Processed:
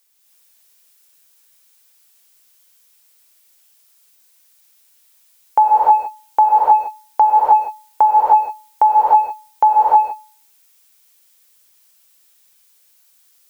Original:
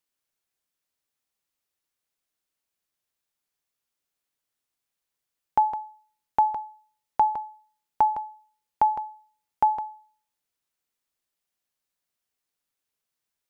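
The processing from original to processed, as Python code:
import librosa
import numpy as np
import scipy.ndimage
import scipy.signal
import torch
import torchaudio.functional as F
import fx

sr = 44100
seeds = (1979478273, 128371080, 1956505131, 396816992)

y = fx.wiener(x, sr, points=41)
y = fx.graphic_eq(y, sr, hz=(125, 250, 500, 1000), db=(-9, -10, 12, 5))
y = fx.dmg_noise_colour(y, sr, seeds[0], colour='blue', level_db=-63.0)
y = fx.low_shelf(y, sr, hz=210.0, db=-7.0)
y = fx.rev_gated(y, sr, seeds[1], gate_ms=340, shape='rising', drr_db=-6.5)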